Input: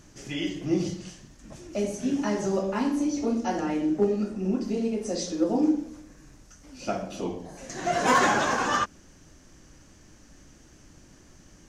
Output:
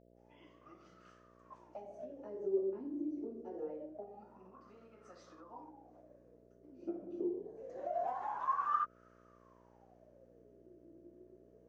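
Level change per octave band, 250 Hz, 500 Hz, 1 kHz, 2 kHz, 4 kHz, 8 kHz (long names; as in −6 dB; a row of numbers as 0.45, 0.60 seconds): −18.5 dB, −12.5 dB, −11.0 dB, −25.5 dB, below −30 dB, below −35 dB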